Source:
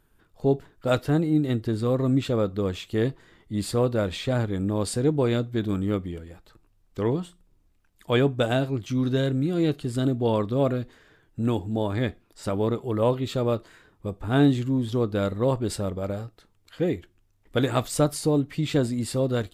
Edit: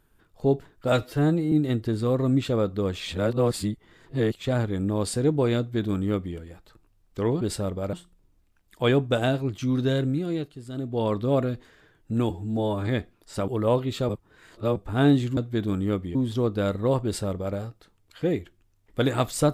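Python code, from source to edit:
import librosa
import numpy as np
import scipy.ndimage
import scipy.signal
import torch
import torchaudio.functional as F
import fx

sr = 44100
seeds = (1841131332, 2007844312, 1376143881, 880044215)

y = fx.edit(x, sr, fx.stretch_span(start_s=0.92, length_s=0.4, factor=1.5),
    fx.reverse_span(start_s=2.8, length_s=1.45),
    fx.duplicate(start_s=5.38, length_s=0.78, to_s=14.72),
    fx.fade_down_up(start_s=9.34, length_s=1.11, db=-11.5, fade_s=0.46),
    fx.stretch_span(start_s=11.58, length_s=0.38, factor=1.5),
    fx.cut(start_s=12.57, length_s=0.26),
    fx.reverse_span(start_s=13.44, length_s=0.67),
    fx.duplicate(start_s=15.61, length_s=0.52, to_s=7.21), tone=tone)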